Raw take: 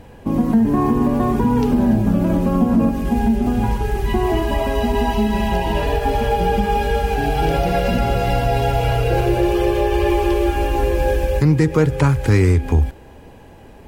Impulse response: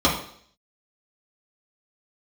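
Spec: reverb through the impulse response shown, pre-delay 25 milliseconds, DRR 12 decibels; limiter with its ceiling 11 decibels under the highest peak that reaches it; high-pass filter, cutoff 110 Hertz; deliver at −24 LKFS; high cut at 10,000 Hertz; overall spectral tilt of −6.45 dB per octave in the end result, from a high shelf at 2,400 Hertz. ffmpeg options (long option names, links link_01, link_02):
-filter_complex "[0:a]highpass=110,lowpass=10000,highshelf=frequency=2400:gain=-3,alimiter=limit=-14.5dB:level=0:latency=1,asplit=2[link_01][link_02];[1:a]atrim=start_sample=2205,adelay=25[link_03];[link_02][link_03]afir=irnorm=-1:irlink=0,volume=-30.5dB[link_04];[link_01][link_04]amix=inputs=2:normalize=0,volume=-2dB"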